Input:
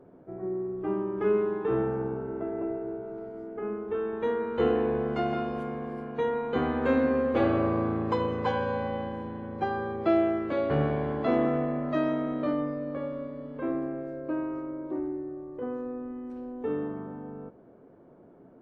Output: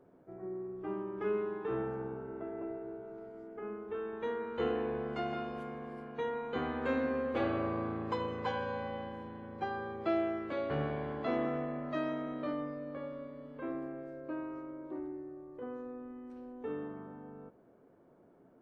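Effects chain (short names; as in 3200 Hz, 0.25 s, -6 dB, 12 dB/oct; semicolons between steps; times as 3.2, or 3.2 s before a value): tilt shelf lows -3 dB; gain -6.5 dB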